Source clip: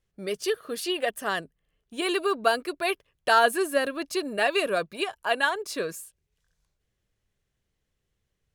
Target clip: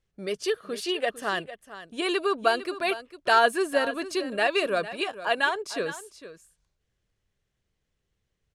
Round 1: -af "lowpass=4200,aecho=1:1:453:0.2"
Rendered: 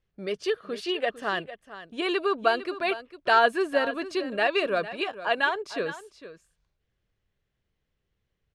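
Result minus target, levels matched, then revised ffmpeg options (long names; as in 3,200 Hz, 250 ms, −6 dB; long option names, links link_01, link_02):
8,000 Hz band −9.5 dB
-af "lowpass=8500,aecho=1:1:453:0.2"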